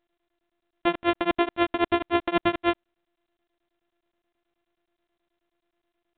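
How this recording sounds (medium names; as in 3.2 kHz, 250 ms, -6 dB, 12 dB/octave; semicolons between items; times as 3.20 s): a buzz of ramps at a fixed pitch in blocks of 128 samples; tremolo triangle 9.4 Hz, depth 100%; µ-law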